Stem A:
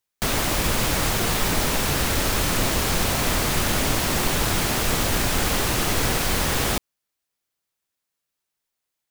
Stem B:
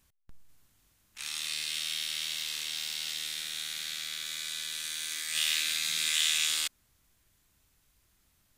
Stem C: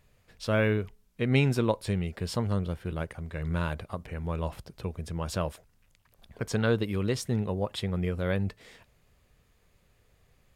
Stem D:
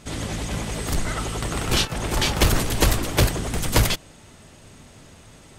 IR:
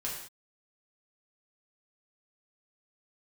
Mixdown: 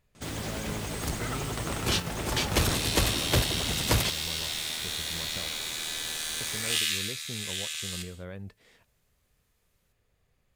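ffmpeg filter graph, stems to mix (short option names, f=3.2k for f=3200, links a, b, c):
-filter_complex "[0:a]lowshelf=f=220:g=-9,volume=-19dB[a];[1:a]highpass=930,adelay=1350,volume=-0.5dB,afade=t=out:st=6.77:d=0.41:silence=0.334965,asplit=2[b][c];[c]volume=-6dB[d];[2:a]alimiter=limit=-23.5dB:level=0:latency=1:release=428,volume=-7.5dB[e];[3:a]highpass=56,adelay=150,volume=-6dB[f];[4:a]atrim=start_sample=2205[g];[d][g]afir=irnorm=-1:irlink=0[h];[a][b][e][f][h]amix=inputs=5:normalize=0"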